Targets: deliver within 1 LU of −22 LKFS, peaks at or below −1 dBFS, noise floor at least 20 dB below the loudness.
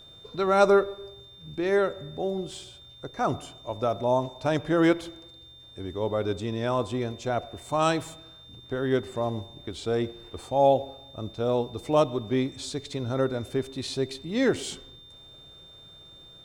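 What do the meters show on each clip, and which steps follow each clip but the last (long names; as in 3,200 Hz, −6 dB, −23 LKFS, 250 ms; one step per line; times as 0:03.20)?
interfering tone 3,600 Hz; level of the tone −48 dBFS; integrated loudness −27.5 LKFS; sample peak −8.0 dBFS; target loudness −22.0 LKFS
→ notch filter 3,600 Hz, Q 30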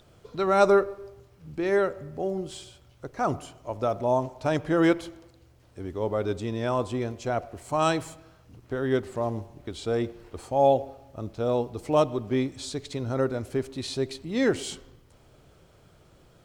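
interfering tone none found; integrated loudness −27.5 LKFS; sample peak −8.0 dBFS; target loudness −22.0 LKFS
→ level +5.5 dB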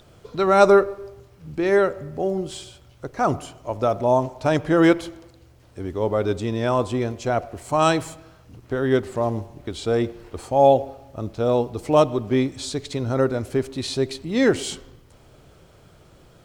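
integrated loudness −22.0 LKFS; sample peak −2.5 dBFS; background noise floor −52 dBFS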